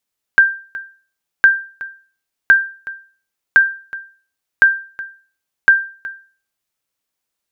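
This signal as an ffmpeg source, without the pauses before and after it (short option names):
-f lavfi -i "aevalsrc='0.841*(sin(2*PI*1580*mod(t,1.06))*exp(-6.91*mod(t,1.06)/0.4)+0.119*sin(2*PI*1580*max(mod(t,1.06)-0.37,0))*exp(-6.91*max(mod(t,1.06)-0.37,0)/0.4))':d=6.36:s=44100"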